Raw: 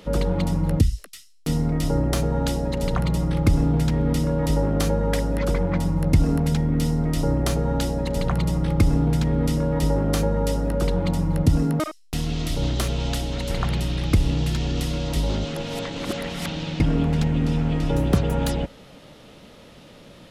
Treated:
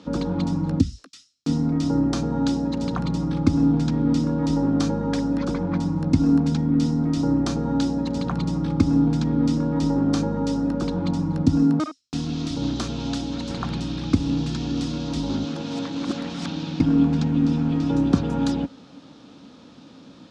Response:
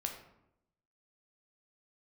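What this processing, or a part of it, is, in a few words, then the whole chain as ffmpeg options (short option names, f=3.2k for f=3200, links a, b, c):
car door speaker: -af "highpass=110,equalizer=f=130:t=q:w=4:g=-4,equalizer=f=270:t=q:w=4:g=10,equalizer=f=410:t=q:w=4:g=-5,equalizer=f=600:t=q:w=4:g=-8,equalizer=f=2k:t=q:w=4:g=-10,equalizer=f=2.9k:t=q:w=4:g=-6,lowpass=f=6.6k:w=0.5412,lowpass=f=6.6k:w=1.3066"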